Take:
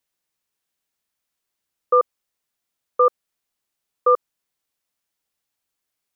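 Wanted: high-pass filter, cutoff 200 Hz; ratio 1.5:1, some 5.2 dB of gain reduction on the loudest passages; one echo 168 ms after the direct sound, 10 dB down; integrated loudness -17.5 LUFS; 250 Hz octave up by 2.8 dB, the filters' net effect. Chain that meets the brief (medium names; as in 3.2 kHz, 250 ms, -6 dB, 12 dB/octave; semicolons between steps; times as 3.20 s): high-pass 200 Hz; peaking EQ 250 Hz +7 dB; compression 1.5:1, threshold -25 dBFS; delay 168 ms -10 dB; trim +8.5 dB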